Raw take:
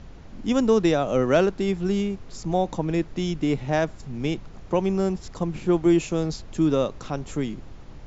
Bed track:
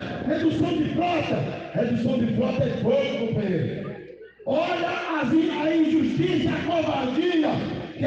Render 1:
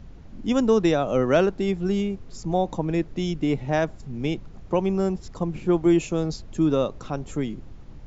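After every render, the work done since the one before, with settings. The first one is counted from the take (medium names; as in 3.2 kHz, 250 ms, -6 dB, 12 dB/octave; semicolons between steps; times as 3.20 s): noise reduction 6 dB, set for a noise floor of -43 dBFS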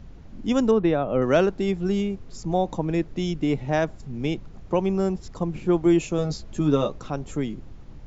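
0.71–1.22 s: distance through air 350 m; 6.17–6.96 s: doubling 14 ms -4 dB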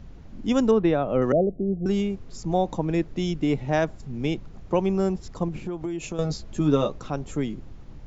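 1.32–1.86 s: rippled Chebyshev low-pass 730 Hz, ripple 3 dB; 5.48–6.19 s: compression 16:1, threshold -26 dBFS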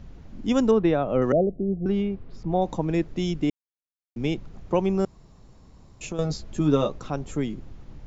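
1.47–2.62 s: distance through air 260 m; 3.50–4.16 s: mute; 5.05–6.01 s: room tone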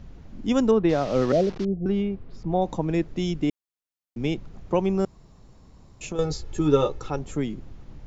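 0.89–1.65 s: one-bit delta coder 32 kbps, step -32.5 dBFS; 6.15–7.19 s: comb 2.3 ms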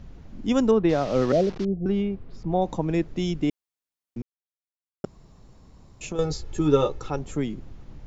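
4.22–5.04 s: mute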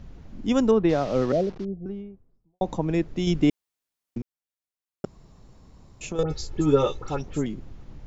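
0.80–2.61 s: studio fade out; 3.27–4.18 s: gain +4.5 dB; 6.23–7.46 s: phase dispersion highs, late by 79 ms, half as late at 2.4 kHz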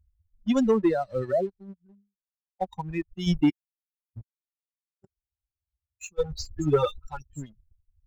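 expander on every frequency bin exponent 3; waveshaping leveller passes 1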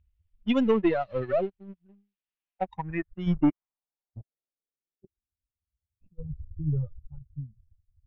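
partial rectifier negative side -3 dB; low-pass sweep 2.8 kHz -> 120 Hz, 2.44–6.34 s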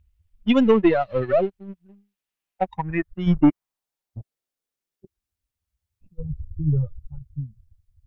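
trim +6.5 dB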